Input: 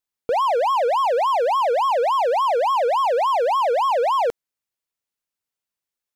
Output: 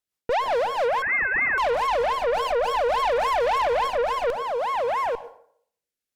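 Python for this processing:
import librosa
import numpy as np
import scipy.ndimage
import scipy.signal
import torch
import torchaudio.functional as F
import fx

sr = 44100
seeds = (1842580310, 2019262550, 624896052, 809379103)

p1 = x + fx.echo_single(x, sr, ms=850, db=-8.5, dry=0)
p2 = fx.rotary_switch(p1, sr, hz=5.0, then_hz=0.6, switch_at_s=0.35)
p3 = fx.rider(p2, sr, range_db=10, speed_s=0.5)
p4 = p2 + (p3 * librosa.db_to_amplitude(-3.0))
p5 = fx.rev_plate(p4, sr, seeds[0], rt60_s=0.61, hf_ratio=0.65, predelay_ms=85, drr_db=15.5)
p6 = fx.tube_stage(p5, sr, drive_db=20.0, bias=0.55)
p7 = fx.freq_invert(p6, sr, carrier_hz=2600, at=(1.02, 1.58))
y = fx.env_flatten(p7, sr, amount_pct=50, at=(2.33, 3.88))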